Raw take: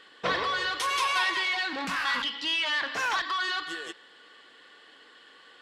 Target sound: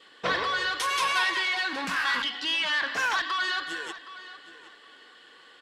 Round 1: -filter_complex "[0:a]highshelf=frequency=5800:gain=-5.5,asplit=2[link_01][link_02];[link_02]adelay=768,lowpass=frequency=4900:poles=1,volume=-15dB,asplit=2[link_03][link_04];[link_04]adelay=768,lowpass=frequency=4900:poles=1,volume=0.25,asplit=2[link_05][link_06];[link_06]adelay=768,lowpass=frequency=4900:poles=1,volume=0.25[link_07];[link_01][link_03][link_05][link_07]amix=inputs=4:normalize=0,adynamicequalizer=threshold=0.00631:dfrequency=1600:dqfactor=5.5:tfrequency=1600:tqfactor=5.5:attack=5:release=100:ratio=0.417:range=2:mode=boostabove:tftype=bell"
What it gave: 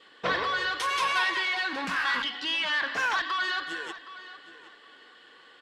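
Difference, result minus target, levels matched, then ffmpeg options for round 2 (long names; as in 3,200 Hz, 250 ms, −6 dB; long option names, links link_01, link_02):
8,000 Hz band −4.0 dB
-filter_complex "[0:a]highshelf=frequency=5800:gain=2.5,asplit=2[link_01][link_02];[link_02]adelay=768,lowpass=frequency=4900:poles=1,volume=-15dB,asplit=2[link_03][link_04];[link_04]adelay=768,lowpass=frequency=4900:poles=1,volume=0.25,asplit=2[link_05][link_06];[link_06]adelay=768,lowpass=frequency=4900:poles=1,volume=0.25[link_07];[link_01][link_03][link_05][link_07]amix=inputs=4:normalize=0,adynamicequalizer=threshold=0.00631:dfrequency=1600:dqfactor=5.5:tfrequency=1600:tqfactor=5.5:attack=5:release=100:ratio=0.417:range=2:mode=boostabove:tftype=bell"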